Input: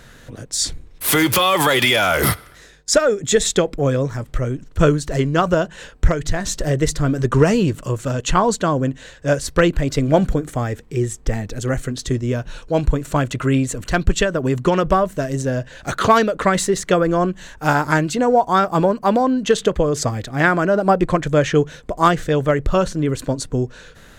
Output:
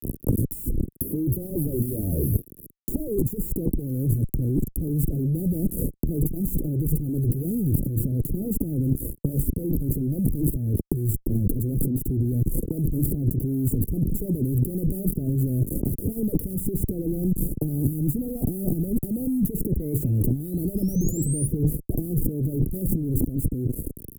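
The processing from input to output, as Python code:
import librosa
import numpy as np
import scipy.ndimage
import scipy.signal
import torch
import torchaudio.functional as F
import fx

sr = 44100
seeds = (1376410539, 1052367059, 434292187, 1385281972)

y = fx.fuzz(x, sr, gain_db=35.0, gate_db=-36.0)
y = fx.over_compress(y, sr, threshold_db=-20.0, ratio=-0.5)
y = fx.spec_paint(y, sr, seeds[0], shape='rise', start_s=19.59, length_s=1.89, low_hz=1600.0, high_hz=9900.0, level_db=-18.0)
y = scipy.signal.sosfilt(scipy.signal.cheby2(4, 60, [1000.0, 5000.0], 'bandstop', fs=sr, output='sos'), y)
y = fx.band_squash(y, sr, depth_pct=100)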